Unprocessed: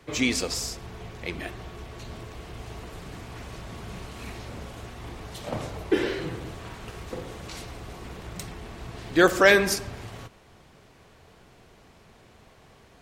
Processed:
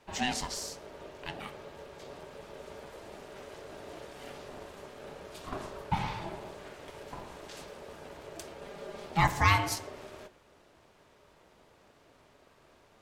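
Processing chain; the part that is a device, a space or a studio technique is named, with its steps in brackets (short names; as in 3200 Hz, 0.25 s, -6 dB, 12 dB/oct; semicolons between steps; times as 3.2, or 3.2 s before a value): alien voice (ring modulator 500 Hz; flange 0.91 Hz, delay 6.4 ms, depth 7.7 ms, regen -76%); 8.61–9.06 comb 5 ms, depth 75%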